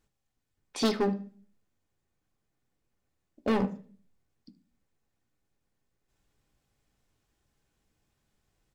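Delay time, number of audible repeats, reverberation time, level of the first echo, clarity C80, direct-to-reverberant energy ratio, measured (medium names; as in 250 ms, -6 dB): 76 ms, 1, 0.40 s, -18.0 dB, 20.0 dB, 5.0 dB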